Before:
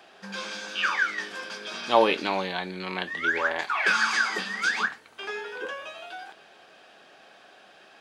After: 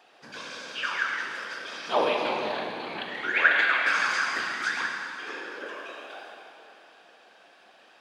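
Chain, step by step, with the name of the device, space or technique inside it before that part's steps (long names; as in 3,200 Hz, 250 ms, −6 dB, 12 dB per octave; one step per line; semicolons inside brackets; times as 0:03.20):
0:03.34–0:03.77: flat-topped bell 2,400 Hz +12.5 dB
whispering ghost (random phases in short frames; high-pass filter 220 Hz 12 dB per octave; convolution reverb RT60 3.0 s, pre-delay 35 ms, DRR 0.5 dB)
level −5.5 dB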